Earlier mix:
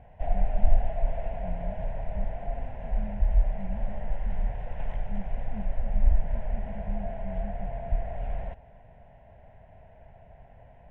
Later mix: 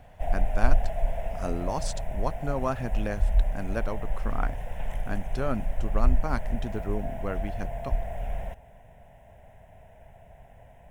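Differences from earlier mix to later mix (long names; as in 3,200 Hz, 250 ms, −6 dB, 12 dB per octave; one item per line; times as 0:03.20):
speech: remove flat-topped band-pass 190 Hz, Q 5.1
master: remove high-frequency loss of the air 290 metres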